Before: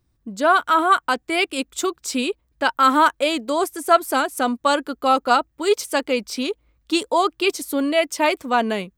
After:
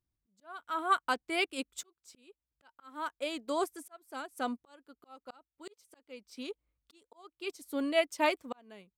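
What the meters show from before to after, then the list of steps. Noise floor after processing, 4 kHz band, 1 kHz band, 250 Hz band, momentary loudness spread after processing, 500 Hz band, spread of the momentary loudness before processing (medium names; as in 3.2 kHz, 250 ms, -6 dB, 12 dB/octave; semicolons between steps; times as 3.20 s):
under -85 dBFS, -15.5 dB, -17.5 dB, -16.0 dB, 22 LU, -15.5 dB, 8 LU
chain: slow attack 701 ms; upward expansion 1.5:1, over -39 dBFS; trim -8 dB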